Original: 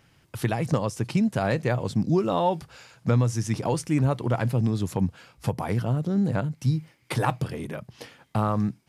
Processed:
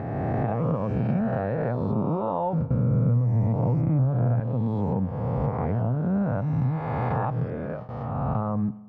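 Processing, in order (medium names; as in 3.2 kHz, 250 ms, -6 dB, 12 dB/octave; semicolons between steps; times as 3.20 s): reverse spectral sustain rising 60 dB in 2.12 s; gate with hold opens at -21 dBFS; 2.53–4.40 s: peaking EQ 130 Hz +13.5 dB 2.1 oct; compression 6:1, threshold -20 dBFS, peak gain reduction 14 dB; peaking EQ 350 Hz -7.5 dB 0.36 oct; upward compressor, threshold -32 dBFS; low-pass 1 kHz 12 dB/octave; spring tank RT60 1.2 s, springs 43 ms, DRR 19 dB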